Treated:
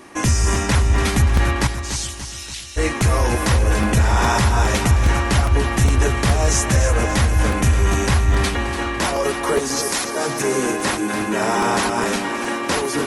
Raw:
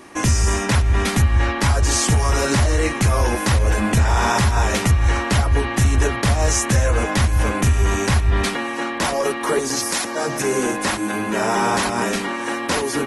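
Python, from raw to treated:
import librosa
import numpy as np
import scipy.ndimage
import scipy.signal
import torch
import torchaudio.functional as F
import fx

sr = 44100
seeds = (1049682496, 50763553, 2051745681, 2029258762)

p1 = fx.ladder_highpass(x, sr, hz=2500.0, resonance_pct=35, at=(1.66, 2.76), fade=0.02)
p2 = p1 + fx.echo_feedback(p1, sr, ms=289, feedback_pct=53, wet_db=-10, dry=0)
y = fx.buffer_crackle(p2, sr, first_s=0.55, period_s=0.41, block=128, kind='repeat')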